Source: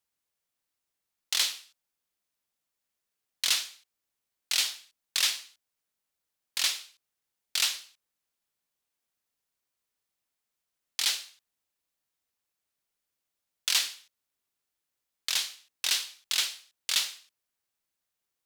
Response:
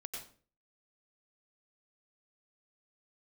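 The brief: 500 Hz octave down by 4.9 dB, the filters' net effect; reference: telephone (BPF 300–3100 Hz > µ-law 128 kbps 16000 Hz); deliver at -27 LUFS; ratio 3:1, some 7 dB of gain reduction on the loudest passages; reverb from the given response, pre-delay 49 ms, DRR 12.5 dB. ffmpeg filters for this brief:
-filter_complex "[0:a]equalizer=f=500:t=o:g=-6,acompressor=threshold=-31dB:ratio=3,asplit=2[a][b];[1:a]atrim=start_sample=2205,adelay=49[c];[b][c]afir=irnorm=-1:irlink=0,volume=-10.5dB[d];[a][d]amix=inputs=2:normalize=0,highpass=300,lowpass=3.1k,volume=13.5dB" -ar 16000 -c:a pcm_mulaw

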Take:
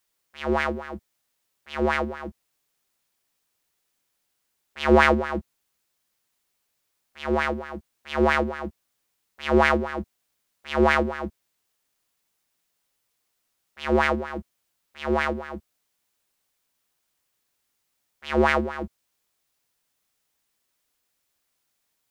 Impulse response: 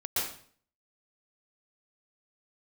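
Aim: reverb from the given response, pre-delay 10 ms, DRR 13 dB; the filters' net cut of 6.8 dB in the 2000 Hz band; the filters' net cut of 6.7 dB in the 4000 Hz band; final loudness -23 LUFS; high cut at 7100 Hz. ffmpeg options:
-filter_complex "[0:a]lowpass=7.1k,equalizer=f=2k:t=o:g=-7.5,equalizer=f=4k:t=o:g=-5.5,asplit=2[a][b];[1:a]atrim=start_sample=2205,adelay=10[c];[b][c]afir=irnorm=-1:irlink=0,volume=-20dB[d];[a][d]amix=inputs=2:normalize=0,volume=2.5dB"

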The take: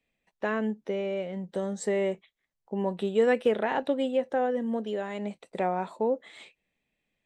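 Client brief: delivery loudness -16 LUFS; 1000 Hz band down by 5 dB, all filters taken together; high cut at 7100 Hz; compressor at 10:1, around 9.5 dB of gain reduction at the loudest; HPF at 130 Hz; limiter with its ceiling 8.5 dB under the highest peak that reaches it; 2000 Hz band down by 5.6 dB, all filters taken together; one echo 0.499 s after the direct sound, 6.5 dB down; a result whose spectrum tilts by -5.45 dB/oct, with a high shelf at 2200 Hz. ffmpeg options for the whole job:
-af "highpass=130,lowpass=7.1k,equalizer=f=1k:t=o:g=-7,equalizer=f=2k:t=o:g=-6.5,highshelf=f=2.2k:g=4,acompressor=threshold=-29dB:ratio=10,alimiter=level_in=5.5dB:limit=-24dB:level=0:latency=1,volume=-5.5dB,aecho=1:1:499:0.473,volume=22dB"

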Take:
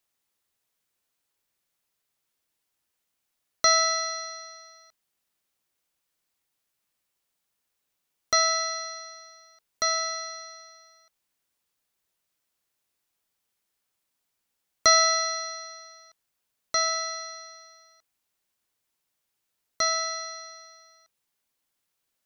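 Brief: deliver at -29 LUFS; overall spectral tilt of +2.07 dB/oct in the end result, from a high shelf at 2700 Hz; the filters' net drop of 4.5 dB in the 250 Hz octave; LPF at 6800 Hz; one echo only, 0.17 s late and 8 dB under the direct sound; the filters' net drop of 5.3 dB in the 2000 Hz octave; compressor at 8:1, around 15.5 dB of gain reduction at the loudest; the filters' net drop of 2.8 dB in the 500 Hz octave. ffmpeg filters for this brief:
-af "lowpass=6.8k,equalizer=f=250:t=o:g=-5,equalizer=f=500:t=o:g=-3.5,equalizer=f=2k:t=o:g=-8,highshelf=f=2.7k:g=8,acompressor=threshold=-29dB:ratio=8,aecho=1:1:170:0.398,volume=4dB"

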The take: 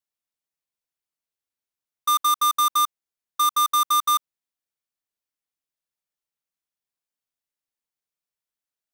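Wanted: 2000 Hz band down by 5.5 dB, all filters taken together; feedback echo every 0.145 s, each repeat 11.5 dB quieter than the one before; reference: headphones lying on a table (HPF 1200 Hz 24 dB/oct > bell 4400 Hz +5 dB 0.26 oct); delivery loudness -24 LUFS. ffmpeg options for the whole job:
-af "highpass=f=1.2k:w=0.5412,highpass=f=1.2k:w=1.3066,equalizer=f=2k:t=o:g=-7,equalizer=f=4.4k:t=o:w=0.26:g=5,aecho=1:1:145|290|435:0.266|0.0718|0.0194,volume=-1.5dB"

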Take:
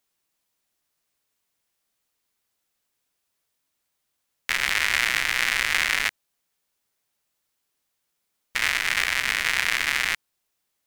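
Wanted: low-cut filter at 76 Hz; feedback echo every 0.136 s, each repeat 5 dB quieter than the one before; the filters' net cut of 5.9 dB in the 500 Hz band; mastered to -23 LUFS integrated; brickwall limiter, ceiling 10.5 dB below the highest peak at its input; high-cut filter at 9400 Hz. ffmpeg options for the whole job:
-af "highpass=76,lowpass=9.4k,equalizer=f=500:t=o:g=-8,alimiter=limit=-16dB:level=0:latency=1,aecho=1:1:136|272|408|544|680|816|952:0.562|0.315|0.176|0.0988|0.0553|0.031|0.0173,volume=6dB"

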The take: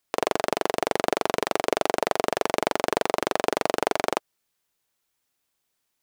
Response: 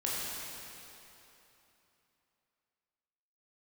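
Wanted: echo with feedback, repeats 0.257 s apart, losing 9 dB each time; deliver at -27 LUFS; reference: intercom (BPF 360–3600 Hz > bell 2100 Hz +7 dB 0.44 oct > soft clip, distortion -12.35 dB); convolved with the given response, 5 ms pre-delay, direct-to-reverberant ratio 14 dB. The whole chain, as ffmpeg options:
-filter_complex "[0:a]aecho=1:1:257|514|771|1028:0.355|0.124|0.0435|0.0152,asplit=2[a][b];[1:a]atrim=start_sample=2205,adelay=5[c];[b][c]afir=irnorm=-1:irlink=0,volume=-20.5dB[d];[a][d]amix=inputs=2:normalize=0,highpass=360,lowpass=3.6k,equalizer=f=2.1k:t=o:w=0.44:g=7,asoftclip=threshold=-13dB,volume=1dB"

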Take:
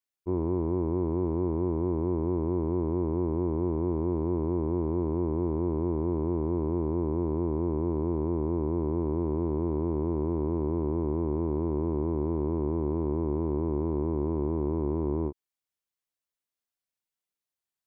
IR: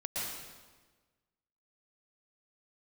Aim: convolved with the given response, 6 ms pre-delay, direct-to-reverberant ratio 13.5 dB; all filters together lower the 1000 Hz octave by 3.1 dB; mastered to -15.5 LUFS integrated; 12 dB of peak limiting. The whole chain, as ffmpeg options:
-filter_complex "[0:a]equalizer=f=1k:t=o:g=-3.5,alimiter=level_in=7dB:limit=-24dB:level=0:latency=1,volume=-7dB,asplit=2[a][b];[1:a]atrim=start_sample=2205,adelay=6[c];[b][c]afir=irnorm=-1:irlink=0,volume=-17.5dB[d];[a][d]amix=inputs=2:normalize=0,volume=24dB"

